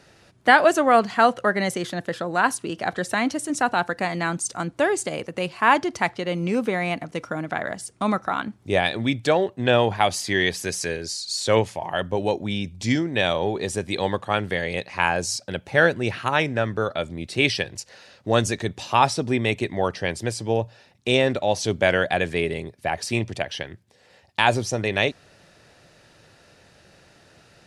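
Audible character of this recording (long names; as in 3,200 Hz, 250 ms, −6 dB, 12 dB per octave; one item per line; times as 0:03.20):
background noise floor −56 dBFS
spectral slope −4.0 dB per octave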